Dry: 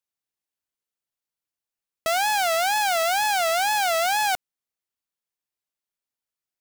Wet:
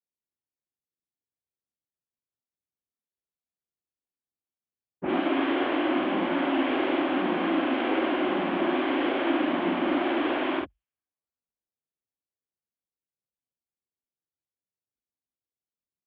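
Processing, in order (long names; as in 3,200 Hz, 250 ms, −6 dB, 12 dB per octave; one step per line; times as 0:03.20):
cochlear-implant simulation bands 12
low-pass that shuts in the quiet parts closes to 1,300 Hz, open at −22 dBFS
chorus effect 1.3 Hz, delay 16 ms, depth 4.9 ms
change of speed 0.411×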